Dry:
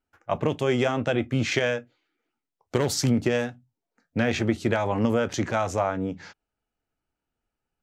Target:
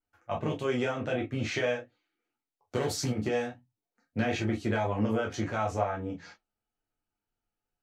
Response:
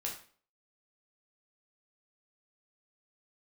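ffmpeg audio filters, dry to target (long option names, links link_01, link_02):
-filter_complex "[0:a]flanger=delay=6.1:depth=2.9:regen=-73:speed=1.6:shape=triangular[link_01];[1:a]atrim=start_sample=2205,atrim=end_sample=3528,asetrate=70560,aresample=44100[link_02];[link_01][link_02]afir=irnorm=-1:irlink=0,adynamicequalizer=threshold=0.00282:dfrequency=3300:dqfactor=0.7:tfrequency=3300:tqfactor=0.7:attack=5:release=100:ratio=0.375:range=2.5:mode=cutabove:tftype=highshelf,volume=3dB"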